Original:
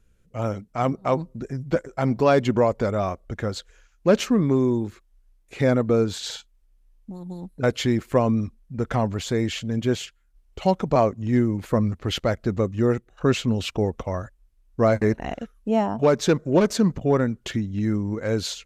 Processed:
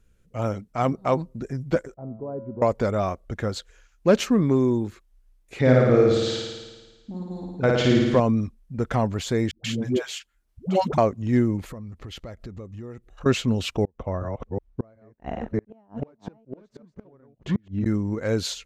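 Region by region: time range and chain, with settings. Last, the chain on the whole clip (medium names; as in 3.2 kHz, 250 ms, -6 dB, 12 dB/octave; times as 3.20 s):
1.94–2.62 s: Bessel low-pass 540 Hz, order 4 + feedback comb 110 Hz, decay 1.2 s, mix 80%
5.59–8.20 s: low-pass 5 kHz + flutter echo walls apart 9.4 m, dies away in 1.3 s
9.51–10.98 s: high-pass 130 Hz 6 dB/octave + phase dispersion highs, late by 134 ms, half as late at 400 Hz
11.61–13.26 s: bass shelf 68 Hz +9.5 dB + compression 5:1, threshold -36 dBFS + band-stop 1.5 kHz, Q 15
13.84–17.86 s: chunks repeated in reverse 373 ms, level -3 dB + low-pass 1.2 kHz 6 dB/octave + inverted gate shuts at -15 dBFS, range -35 dB
whole clip: none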